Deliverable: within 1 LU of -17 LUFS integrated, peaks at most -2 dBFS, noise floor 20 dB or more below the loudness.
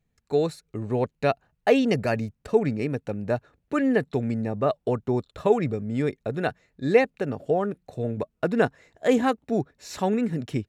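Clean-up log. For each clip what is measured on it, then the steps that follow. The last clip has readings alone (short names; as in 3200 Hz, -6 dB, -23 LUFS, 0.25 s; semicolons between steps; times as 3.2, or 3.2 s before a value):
loudness -26.0 LUFS; peak -6.5 dBFS; loudness target -17.0 LUFS
-> gain +9 dB; limiter -2 dBFS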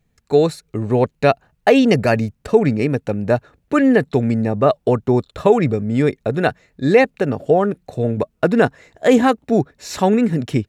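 loudness -17.5 LUFS; peak -2.0 dBFS; noise floor -66 dBFS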